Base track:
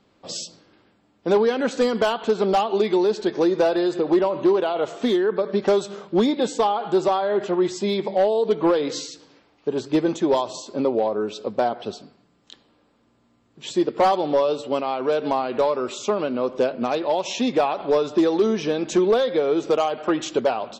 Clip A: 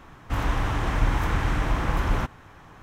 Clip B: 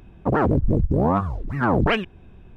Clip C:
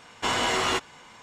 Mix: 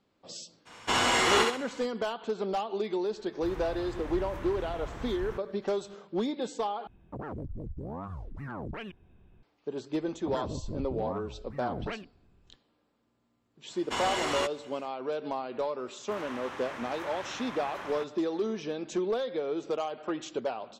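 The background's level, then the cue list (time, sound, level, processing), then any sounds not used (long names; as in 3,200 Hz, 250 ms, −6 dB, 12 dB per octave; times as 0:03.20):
base track −11.5 dB
0:00.65: mix in C −1 dB, fades 0.02 s + feedback echo with a high-pass in the loop 65 ms, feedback 36%, level −3 dB
0:03.12: mix in A −16 dB
0:06.87: overwrite with B −12.5 dB + brickwall limiter −19.5 dBFS
0:10.00: mix in B −17.5 dB
0:13.68: mix in C −6.5 dB, fades 0.05 s
0:15.78: mix in A −10.5 dB + meter weighting curve A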